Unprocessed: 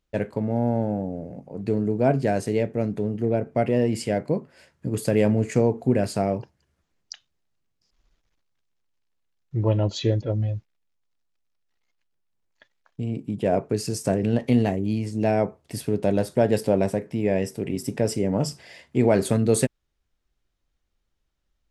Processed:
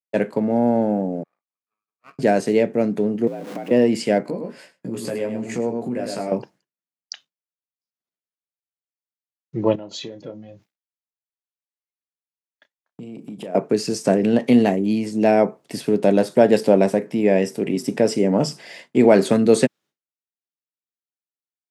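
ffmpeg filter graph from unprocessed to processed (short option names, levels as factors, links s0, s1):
-filter_complex "[0:a]asettb=1/sr,asplit=3[s0][s1][s2];[s0]atrim=end=1.234[s3];[s1]atrim=start=1.23:end=2.19,asetpts=PTS-STARTPTS,afade=t=in:d=0.004:c=qsin,afade=t=out:st=0.956:d=0.004:c=qsin,asuperpass=centerf=1200:order=4:qfactor=6.1,aeval=exprs='max(val(0),0)':c=same[s4];[s2]atrim=start=2.186[s5];[s3][s4]acrossfade=d=0.004:c1=hsin:c2=qsin[s6];[s6][s5]acrossfade=d=0.004:c1=qsin:c2=hsin,asettb=1/sr,asplit=3[s7][s8][s9];[s7]atrim=end=3.274[s10];[s8]atrim=start=3.27:end=3.71,asetpts=PTS-STARTPTS,afade=t=in:d=0.004:c=qsin,afade=t=out:st=0.436:d=0.004:c=qsin,aeval=exprs='val(0)+0.5*0.0188*sgn(val(0))':c=same,acompressor=threshold=0.0224:ratio=8:attack=3.2:release=140:knee=1:detection=peak,afreqshift=59[s11];[s9]atrim=start=3.706[s12];[s10][s11]acrossfade=d=0.004:c1=hsin:c2=qsin[s13];[s13][s12]acrossfade=d=0.004:c1=qsin:c2=hsin,asettb=1/sr,asplit=3[s14][s15][s16];[s14]atrim=end=4.234[s17];[s15]atrim=start=4.23:end=6.32,asetpts=PTS-STARTPTS,afade=t=in:d=0.004:c=qsin,afade=t=out:st=2.086:d=0.004:c=qsin,aecho=1:1:104:0.355,atrim=end_sample=92169,acompressor=threshold=0.0251:ratio=3:attack=3.2:release=140:knee=1:detection=peak,asplit=2[s18][s19];[s19]adelay=17,volume=0.75[s20];[s18][s20]amix=inputs=2:normalize=0,atrim=end_sample=92169[s21];[s16]atrim=start=6.316[s22];[s17][s21]acrossfade=d=0.004:c1=hsin:c2=qsin[s23];[s23][s22]acrossfade=d=0.004:c1=qsin:c2=hsin,asettb=1/sr,asplit=3[s24][s25][s26];[s24]atrim=end=9.754[s27];[s25]atrim=start=9.75:end=13.55,asetpts=PTS-STARTPTS,afade=t=in:d=0.004:c=qsin,afade=t=out:st=3.796:d=0.004:c=qsin,highshelf=f=9100:g=4.5,acompressor=threshold=0.0178:ratio=8:attack=3.2:release=140:knee=1:detection=peak,asplit=2[s28][s29];[s29]adelay=32,volume=0.282[s30];[s28][s30]amix=inputs=2:normalize=0,atrim=end_sample=167580[s31];[s26]atrim=start=13.546[s32];[s27][s31]acrossfade=d=0.004:c1=hsin:c2=qsin[s33];[s33][s32]acrossfade=d=0.004:c1=qsin:c2=hsin,agate=range=0.0224:threshold=0.00447:ratio=3:detection=peak,highpass=f=170:w=0.5412,highpass=f=170:w=1.3066,acrossover=split=6800[s34][s35];[s35]acompressor=threshold=0.00398:ratio=4:attack=1:release=60[s36];[s34][s36]amix=inputs=2:normalize=0,volume=2.11"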